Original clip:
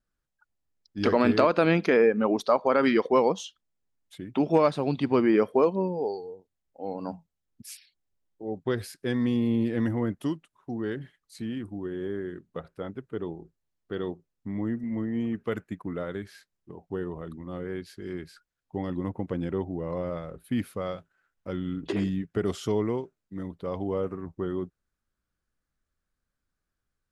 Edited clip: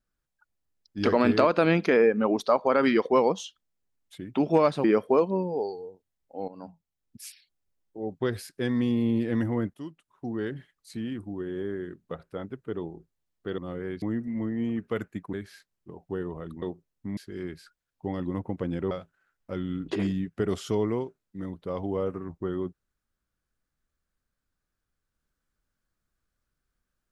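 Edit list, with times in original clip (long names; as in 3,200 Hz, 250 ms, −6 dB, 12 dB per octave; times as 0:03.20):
0:04.84–0:05.29: remove
0:06.93–0:07.70: fade in, from −12 dB
0:10.19–0:10.70: fade in, from −15.5 dB
0:14.03–0:14.58: swap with 0:17.43–0:17.87
0:15.89–0:16.14: remove
0:19.61–0:20.88: remove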